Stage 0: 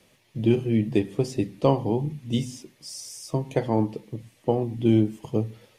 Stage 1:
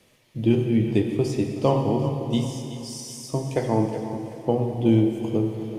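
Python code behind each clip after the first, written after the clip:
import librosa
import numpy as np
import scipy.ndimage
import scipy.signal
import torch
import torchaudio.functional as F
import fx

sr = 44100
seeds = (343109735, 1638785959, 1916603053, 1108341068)

y = fx.echo_thinned(x, sr, ms=374, feedback_pct=42, hz=420.0, wet_db=-12.0)
y = fx.rev_plate(y, sr, seeds[0], rt60_s=2.7, hf_ratio=0.8, predelay_ms=0, drr_db=4.0)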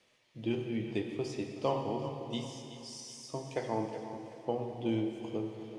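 y = scipy.signal.sosfilt(scipy.signal.butter(2, 6500.0, 'lowpass', fs=sr, output='sos'), x)
y = fx.low_shelf(y, sr, hz=340.0, db=-12.0)
y = y * 10.0 ** (-6.5 / 20.0)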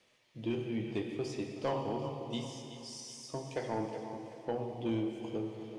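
y = 10.0 ** (-25.0 / 20.0) * np.tanh(x / 10.0 ** (-25.0 / 20.0))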